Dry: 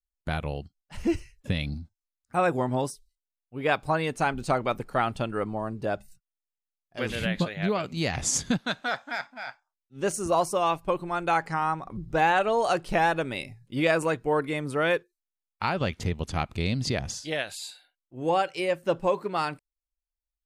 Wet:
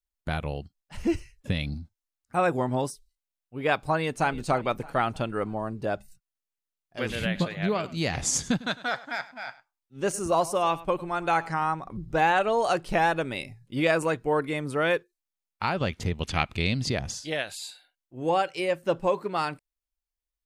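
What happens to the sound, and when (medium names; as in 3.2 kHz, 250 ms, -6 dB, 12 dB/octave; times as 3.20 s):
3.86–4.30 s: echo throw 310 ms, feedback 50%, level -17.5 dB
7.25–11.65 s: delay 102 ms -18.5 dB
16.20–16.83 s: peaking EQ 2.6 kHz +11.5 dB -> +3.5 dB 1.6 oct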